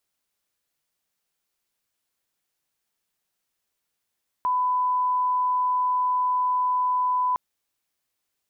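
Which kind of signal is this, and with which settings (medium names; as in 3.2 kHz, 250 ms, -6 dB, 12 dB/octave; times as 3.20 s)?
line-up tone -20 dBFS 2.91 s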